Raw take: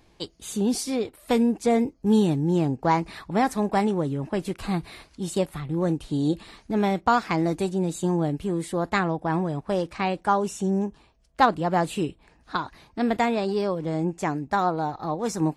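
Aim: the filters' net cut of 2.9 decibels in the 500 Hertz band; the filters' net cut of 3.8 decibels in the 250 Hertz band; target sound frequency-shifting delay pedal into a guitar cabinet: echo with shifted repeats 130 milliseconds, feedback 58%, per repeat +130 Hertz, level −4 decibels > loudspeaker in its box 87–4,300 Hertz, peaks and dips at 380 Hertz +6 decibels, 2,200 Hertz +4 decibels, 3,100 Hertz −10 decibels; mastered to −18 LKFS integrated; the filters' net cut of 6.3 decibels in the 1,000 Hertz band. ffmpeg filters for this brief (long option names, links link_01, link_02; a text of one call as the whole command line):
ffmpeg -i in.wav -filter_complex "[0:a]equalizer=frequency=250:width_type=o:gain=-5,equalizer=frequency=500:width_type=o:gain=-4.5,equalizer=frequency=1000:width_type=o:gain=-6.5,asplit=9[link_01][link_02][link_03][link_04][link_05][link_06][link_07][link_08][link_09];[link_02]adelay=130,afreqshift=130,volume=-4dB[link_10];[link_03]adelay=260,afreqshift=260,volume=-8.7dB[link_11];[link_04]adelay=390,afreqshift=390,volume=-13.5dB[link_12];[link_05]adelay=520,afreqshift=520,volume=-18.2dB[link_13];[link_06]adelay=650,afreqshift=650,volume=-22.9dB[link_14];[link_07]adelay=780,afreqshift=780,volume=-27.7dB[link_15];[link_08]adelay=910,afreqshift=910,volume=-32.4dB[link_16];[link_09]adelay=1040,afreqshift=1040,volume=-37.1dB[link_17];[link_01][link_10][link_11][link_12][link_13][link_14][link_15][link_16][link_17]amix=inputs=9:normalize=0,highpass=87,equalizer=frequency=380:width_type=q:width=4:gain=6,equalizer=frequency=2200:width_type=q:width=4:gain=4,equalizer=frequency=3100:width_type=q:width=4:gain=-10,lowpass=frequency=4300:width=0.5412,lowpass=frequency=4300:width=1.3066,volume=9dB" out.wav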